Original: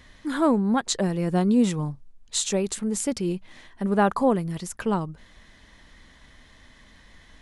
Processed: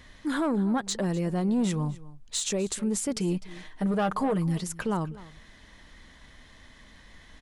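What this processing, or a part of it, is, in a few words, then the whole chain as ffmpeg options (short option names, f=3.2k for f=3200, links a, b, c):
soft clipper into limiter: -filter_complex "[0:a]asettb=1/sr,asplit=3[a][b][c];[a]atrim=end=3.154[d];[b]atrim=start=3.15:end=4.64,asetpts=PTS-STARTPTS,afade=t=in:d=0.004:c=qsin,afade=t=out:st=1.486:d=0.004:c=qsin,aecho=1:1:6.5:0.65,atrim=end_sample=65709[e];[c]atrim=start=4.636[f];[d][e]acrossfade=d=0.004:c1=hsin:c2=qsin[g];[g][f]acrossfade=d=0.004:c1=qsin:c2=hsin,asoftclip=type=tanh:threshold=-15dB,alimiter=limit=-20.5dB:level=0:latency=1:release=57,aecho=1:1:252:0.112"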